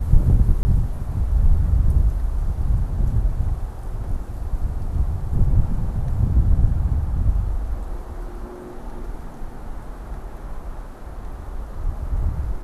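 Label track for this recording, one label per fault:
0.630000	0.650000	drop-out 20 ms

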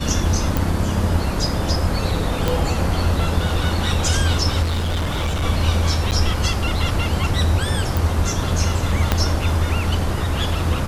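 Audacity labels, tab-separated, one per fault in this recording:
0.570000	0.570000	click
2.480000	2.480000	click
4.620000	5.440000	clipping −18 dBFS
6.110000	6.120000	drop-out 8.2 ms
7.970000	7.970000	click
9.120000	9.120000	click −2 dBFS

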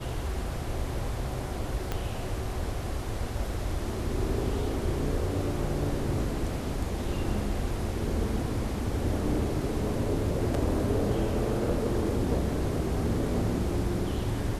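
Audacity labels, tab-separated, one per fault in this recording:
1.920000	1.920000	click −16 dBFS

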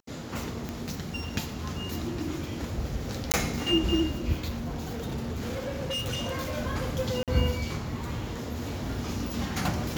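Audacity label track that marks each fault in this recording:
0.690000	0.690000	click
3.320000	3.340000	drop-out 18 ms
4.480000	6.580000	clipping −28 dBFS
7.230000	7.280000	drop-out 47 ms

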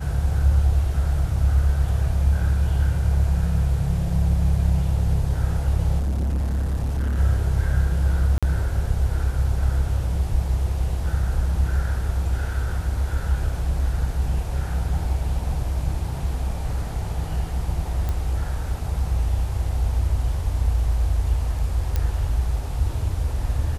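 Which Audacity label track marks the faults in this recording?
5.980000	7.180000	clipping −20 dBFS
8.380000	8.430000	drop-out 46 ms
18.090000	18.090000	click
21.960000	21.960000	click −11 dBFS

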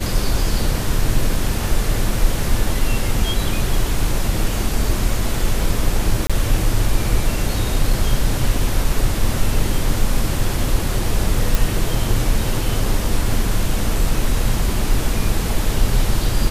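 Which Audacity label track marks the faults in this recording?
6.270000	6.300000	drop-out 26 ms
11.550000	11.550000	click

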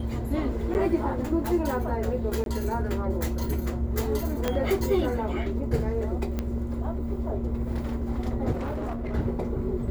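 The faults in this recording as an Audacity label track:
0.740000	0.750000	drop-out 9.5 ms
2.440000	2.460000	drop-out 22 ms
4.480000	4.480000	click −11 dBFS
6.390000	6.390000	click −16 dBFS
8.510000	9.150000	clipping −27 dBFS

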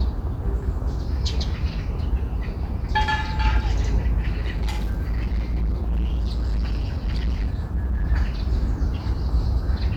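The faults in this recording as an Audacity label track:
4.400000	8.050000	clipping −20 dBFS

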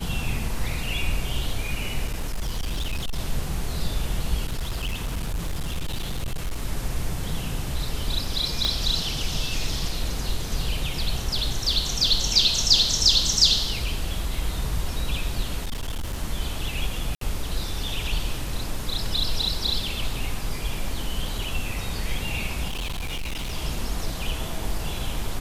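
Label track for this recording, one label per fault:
2.070000	3.180000	clipping −23 dBFS
4.470000	6.620000	clipping −23.5 dBFS
8.650000	8.650000	click −11 dBFS
15.640000	16.230000	clipping −25 dBFS
17.150000	17.210000	drop-out 63 ms
22.680000	23.530000	clipping −26 dBFS

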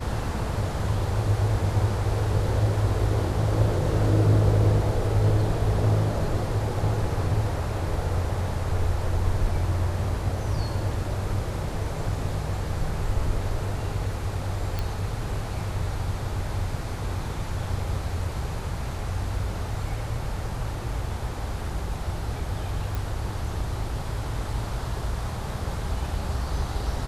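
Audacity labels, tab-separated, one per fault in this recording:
14.790000	14.790000	click −15 dBFS
22.950000	22.950000	click

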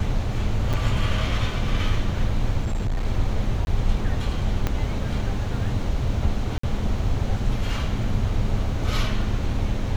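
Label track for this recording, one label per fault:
0.730000	0.740000	drop-out 6.2 ms
2.630000	3.060000	clipping −20.5 dBFS
3.650000	3.670000	drop-out 21 ms
4.670000	4.670000	click −10 dBFS
6.580000	6.630000	drop-out 54 ms

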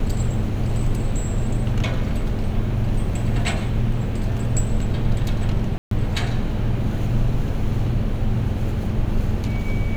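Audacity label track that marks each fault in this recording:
5.780000	5.910000	drop-out 133 ms

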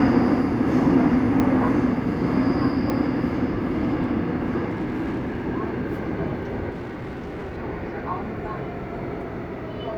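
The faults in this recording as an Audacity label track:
1.400000	1.400000	click −10 dBFS
2.900000	2.900000	click −13 dBFS
4.690000	5.470000	clipping −23 dBFS
6.700000	7.580000	clipping −29 dBFS

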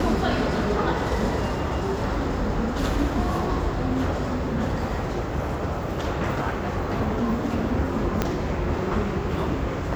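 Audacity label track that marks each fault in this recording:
8.220000	8.220000	click −8 dBFS

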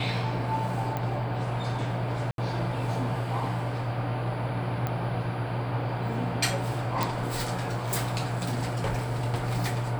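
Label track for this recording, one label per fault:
0.970000	0.970000	click −18 dBFS
2.310000	2.380000	drop-out 72 ms
4.870000	4.870000	click −17 dBFS
7.030000	7.030000	click

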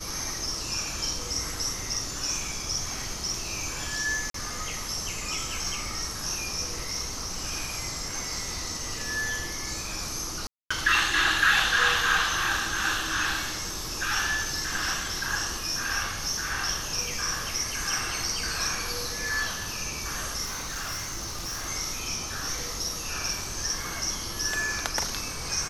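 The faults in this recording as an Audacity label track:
4.300000	4.340000	drop-out 43 ms
10.470000	10.710000	drop-out 235 ms
20.440000	21.690000	clipping −29.5 dBFS

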